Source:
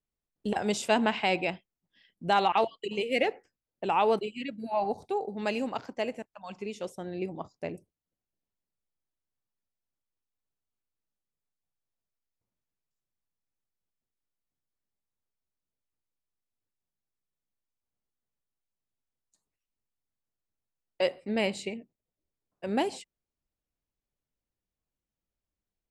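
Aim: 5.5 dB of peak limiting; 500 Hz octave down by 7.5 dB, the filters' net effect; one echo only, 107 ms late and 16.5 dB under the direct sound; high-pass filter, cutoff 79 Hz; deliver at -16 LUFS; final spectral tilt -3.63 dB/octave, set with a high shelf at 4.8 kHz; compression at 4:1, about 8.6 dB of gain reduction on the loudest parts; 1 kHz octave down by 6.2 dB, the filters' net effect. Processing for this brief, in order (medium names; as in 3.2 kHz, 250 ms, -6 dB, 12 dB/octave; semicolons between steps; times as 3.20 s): high-pass 79 Hz; peaking EQ 500 Hz -8.5 dB; peaking EQ 1 kHz -5 dB; treble shelf 4.8 kHz +8 dB; compression 4:1, threshold -35 dBFS; peak limiter -28 dBFS; delay 107 ms -16.5 dB; trim +24.5 dB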